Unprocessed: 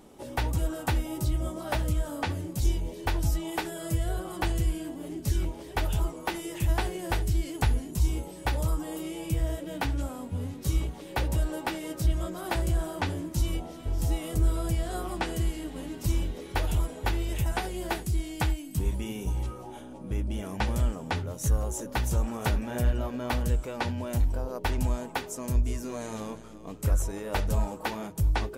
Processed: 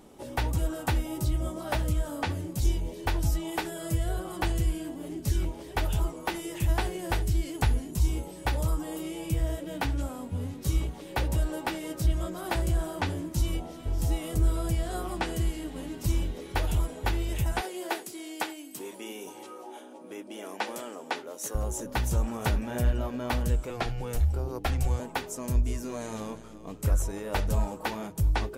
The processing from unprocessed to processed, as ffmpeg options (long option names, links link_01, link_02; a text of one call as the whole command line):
ffmpeg -i in.wav -filter_complex "[0:a]asettb=1/sr,asplit=3[link_01][link_02][link_03];[link_01]atrim=end=17.614[link_04];[link_02]atrim=start=17.61:end=21.55,asetpts=PTS-STARTPTS,afade=type=in:duration=0.004:curve=qsin,afade=type=out:start_time=3.936:duration=0.004:curve=qsin,highpass=frequency=300:width=0.5412,highpass=frequency=300:width=1.3066[link_05];[link_03]atrim=start=21.546[link_06];[link_04][link_05]acrossfade=duration=0.004:curve1=hsin:curve2=qsin[link_07];[link_07][link_06]acrossfade=duration=0.004:curve1=qsin:curve2=hsin,asettb=1/sr,asplit=3[link_08][link_09][link_10];[link_08]atrim=end=23.704[link_11];[link_09]atrim=start=23.7:end=25,asetpts=PTS-STARTPTS,afade=type=in:duration=0.004:curve=qsin,afade=type=out:start_time=1.296:duration=0.004:curve=qsin,afreqshift=-120[link_12];[link_10]atrim=start=24.996[link_13];[link_11][link_12]acrossfade=duration=0.004:curve1=hsin:curve2=qsin[link_14];[link_14][link_13]acrossfade=duration=0.004:curve1=qsin:curve2=hsin" out.wav